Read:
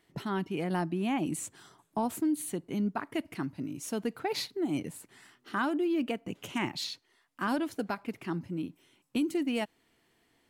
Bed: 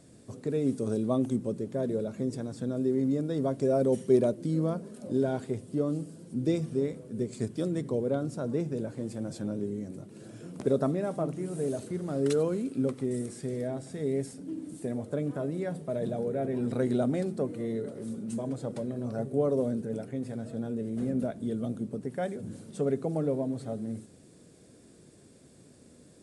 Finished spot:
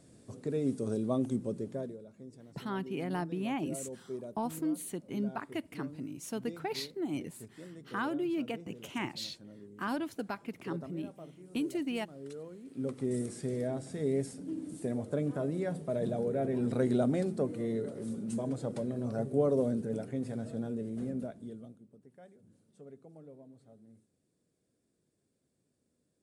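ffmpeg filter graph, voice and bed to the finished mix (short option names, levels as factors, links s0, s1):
-filter_complex "[0:a]adelay=2400,volume=0.631[s0];[1:a]volume=4.73,afade=t=out:st=1.68:d=0.29:silence=0.188365,afade=t=in:st=12.63:d=0.51:silence=0.141254,afade=t=out:st=20.43:d=1.36:silence=0.0794328[s1];[s0][s1]amix=inputs=2:normalize=0"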